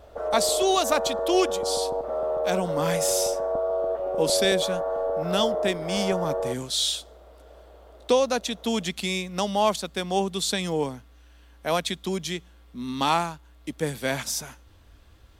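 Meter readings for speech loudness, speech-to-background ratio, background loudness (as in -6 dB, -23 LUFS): -26.5 LUFS, 1.5 dB, -28.0 LUFS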